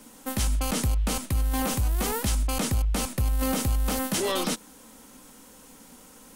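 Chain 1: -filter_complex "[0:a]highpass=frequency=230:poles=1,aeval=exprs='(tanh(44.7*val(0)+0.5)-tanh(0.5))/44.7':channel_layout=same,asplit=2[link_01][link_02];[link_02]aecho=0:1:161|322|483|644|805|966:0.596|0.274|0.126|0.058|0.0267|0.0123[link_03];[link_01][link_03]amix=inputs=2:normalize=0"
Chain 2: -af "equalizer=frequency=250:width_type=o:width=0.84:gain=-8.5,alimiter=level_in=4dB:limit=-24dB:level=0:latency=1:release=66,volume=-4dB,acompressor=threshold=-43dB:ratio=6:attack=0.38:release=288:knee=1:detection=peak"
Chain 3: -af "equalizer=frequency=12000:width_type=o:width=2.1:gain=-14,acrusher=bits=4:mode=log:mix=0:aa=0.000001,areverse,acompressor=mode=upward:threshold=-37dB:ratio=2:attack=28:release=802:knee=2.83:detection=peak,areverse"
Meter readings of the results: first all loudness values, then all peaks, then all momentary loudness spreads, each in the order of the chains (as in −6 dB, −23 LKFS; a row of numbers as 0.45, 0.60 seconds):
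−35.0, −48.5, −28.5 LKFS; −24.0, −36.0, −17.5 dBFS; 16, 2, 20 LU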